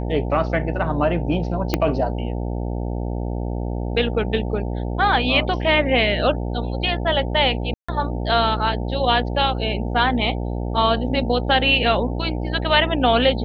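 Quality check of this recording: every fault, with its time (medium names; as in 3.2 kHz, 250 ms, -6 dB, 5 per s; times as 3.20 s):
buzz 60 Hz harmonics 15 -25 dBFS
1.74 s: pop -5 dBFS
7.74–7.88 s: dropout 145 ms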